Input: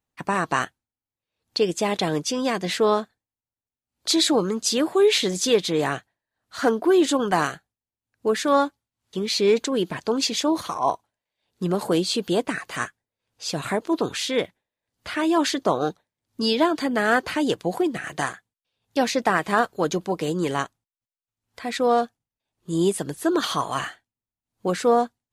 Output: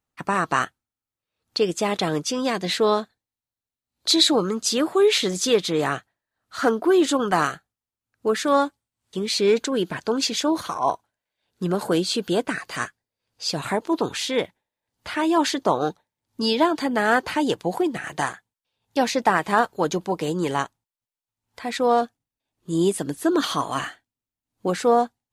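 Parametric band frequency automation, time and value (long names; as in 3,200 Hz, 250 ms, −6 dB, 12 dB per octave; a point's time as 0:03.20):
parametric band +6.5 dB 0.23 octaves
1,300 Hz
from 0:02.47 4,000 Hz
from 0:04.34 1,300 Hz
from 0:08.46 8,400 Hz
from 0:09.39 1,500 Hz
from 0:12.53 4,700 Hz
from 0:13.57 890 Hz
from 0:22.01 280 Hz
from 0:24.71 820 Hz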